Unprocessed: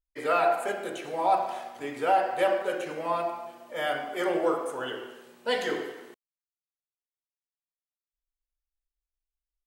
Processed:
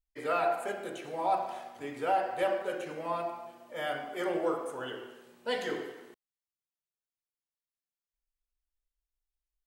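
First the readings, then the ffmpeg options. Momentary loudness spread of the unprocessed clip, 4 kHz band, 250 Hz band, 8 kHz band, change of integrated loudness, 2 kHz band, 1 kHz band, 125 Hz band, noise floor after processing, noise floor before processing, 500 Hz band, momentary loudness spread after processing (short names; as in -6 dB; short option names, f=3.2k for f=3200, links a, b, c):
13 LU, -5.5 dB, -4.0 dB, -5.5 dB, -5.0 dB, -5.5 dB, -5.0 dB, -1.5 dB, under -85 dBFS, under -85 dBFS, -5.0 dB, 12 LU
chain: -af "lowshelf=f=170:g=7,volume=-5.5dB"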